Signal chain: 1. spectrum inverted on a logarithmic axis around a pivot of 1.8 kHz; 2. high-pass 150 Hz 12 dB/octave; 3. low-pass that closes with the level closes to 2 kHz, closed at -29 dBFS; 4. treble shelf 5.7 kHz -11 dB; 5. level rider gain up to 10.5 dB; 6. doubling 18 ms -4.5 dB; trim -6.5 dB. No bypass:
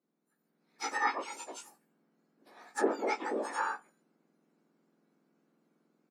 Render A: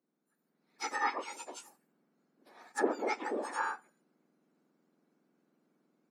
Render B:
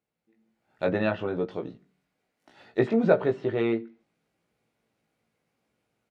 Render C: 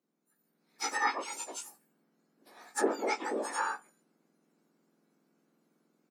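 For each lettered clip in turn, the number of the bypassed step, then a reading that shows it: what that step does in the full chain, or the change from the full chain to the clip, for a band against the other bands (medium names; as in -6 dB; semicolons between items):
6, loudness change -1.5 LU; 1, 250 Hz band +13.0 dB; 4, 8 kHz band +6.5 dB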